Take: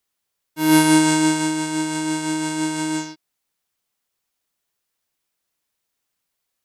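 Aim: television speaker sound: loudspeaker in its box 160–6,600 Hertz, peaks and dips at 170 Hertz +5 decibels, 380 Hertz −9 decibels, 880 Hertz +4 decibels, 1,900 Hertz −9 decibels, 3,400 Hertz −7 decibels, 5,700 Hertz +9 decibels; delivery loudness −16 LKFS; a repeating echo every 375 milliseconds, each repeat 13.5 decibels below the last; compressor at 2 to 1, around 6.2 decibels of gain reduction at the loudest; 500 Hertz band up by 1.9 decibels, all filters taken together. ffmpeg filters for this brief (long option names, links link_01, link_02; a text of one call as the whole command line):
ffmpeg -i in.wav -af "equalizer=frequency=500:width_type=o:gain=6,acompressor=threshold=-20dB:ratio=2,highpass=frequency=160:width=0.5412,highpass=frequency=160:width=1.3066,equalizer=frequency=170:width_type=q:width=4:gain=5,equalizer=frequency=380:width_type=q:width=4:gain=-9,equalizer=frequency=880:width_type=q:width=4:gain=4,equalizer=frequency=1900:width_type=q:width=4:gain=-9,equalizer=frequency=3400:width_type=q:width=4:gain=-7,equalizer=frequency=5700:width_type=q:width=4:gain=9,lowpass=frequency=6600:width=0.5412,lowpass=frequency=6600:width=1.3066,aecho=1:1:375|750:0.211|0.0444,volume=7dB" out.wav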